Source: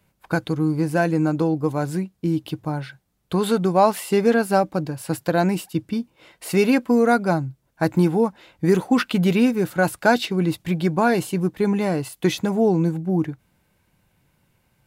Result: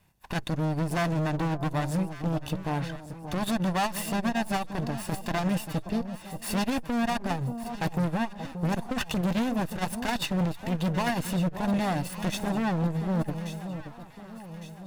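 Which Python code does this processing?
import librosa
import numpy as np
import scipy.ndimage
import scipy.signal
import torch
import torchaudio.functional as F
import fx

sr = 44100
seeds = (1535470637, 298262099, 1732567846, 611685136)

p1 = fx.lower_of_two(x, sr, delay_ms=1.1)
p2 = np.clip(10.0 ** (23.5 / 20.0) * p1, -1.0, 1.0) / 10.0 ** (23.5 / 20.0)
p3 = p2 + fx.echo_alternate(p2, sr, ms=579, hz=1000.0, feedback_pct=66, wet_db=-10.0, dry=0)
y = fx.transformer_sat(p3, sr, knee_hz=73.0)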